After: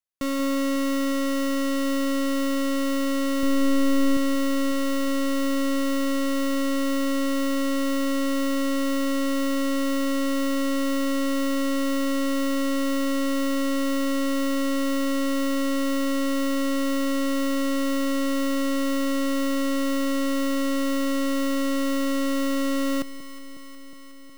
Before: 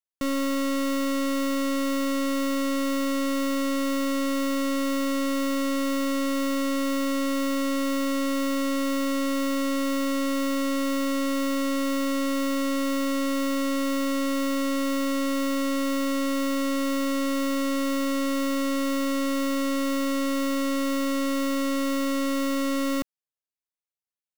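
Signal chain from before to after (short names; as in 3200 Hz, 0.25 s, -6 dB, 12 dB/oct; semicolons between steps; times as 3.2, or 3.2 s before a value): 3.43–4.17 low shelf 200 Hz +10.5 dB; echo with dull and thin repeats by turns 0.182 s, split 940 Hz, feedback 86%, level -12 dB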